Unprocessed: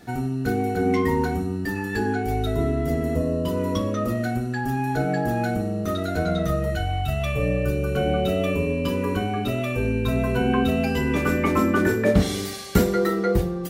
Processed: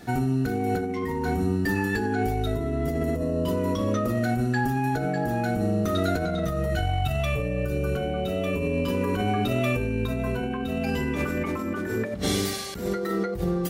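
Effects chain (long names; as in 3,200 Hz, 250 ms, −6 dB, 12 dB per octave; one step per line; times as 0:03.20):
compressor whose output falls as the input rises −26 dBFS, ratio −1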